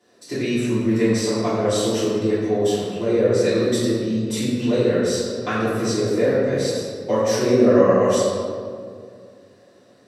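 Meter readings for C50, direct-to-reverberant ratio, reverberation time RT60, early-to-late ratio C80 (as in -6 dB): -2.0 dB, -14.0 dB, 2.3 s, -0.5 dB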